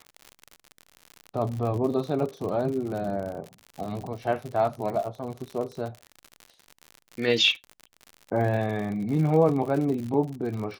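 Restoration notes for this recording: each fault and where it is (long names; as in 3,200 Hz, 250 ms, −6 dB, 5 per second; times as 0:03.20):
surface crackle 72 per second −32 dBFS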